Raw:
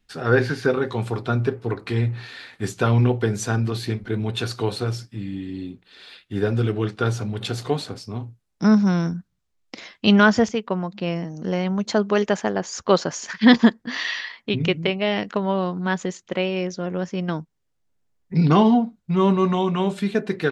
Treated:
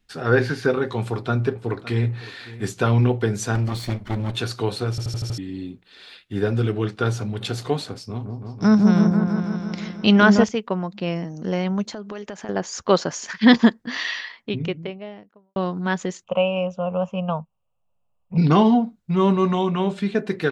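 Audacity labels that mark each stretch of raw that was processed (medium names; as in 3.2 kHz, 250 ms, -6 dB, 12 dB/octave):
0.990000	2.080000	echo throw 560 ms, feedback 15%, level -17.5 dB
3.550000	4.360000	comb filter that takes the minimum delay 0.9 ms
4.900000	4.900000	stutter in place 0.08 s, 6 plays
7.930000	10.440000	delay with an opening low-pass 163 ms, low-pass from 750 Hz, each repeat up 1 oct, level -3 dB
11.850000	12.490000	compression 8:1, threshold -30 dBFS
14.010000	15.560000	studio fade out
16.240000	18.380000	FFT filter 210 Hz 0 dB, 320 Hz -22 dB, 540 Hz +7 dB, 1.2 kHz +6 dB, 1.9 kHz -26 dB, 2.7 kHz +6 dB, 4.4 kHz -24 dB, 7.8 kHz -9 dB
19.670000	20.190000	distance through air 58 m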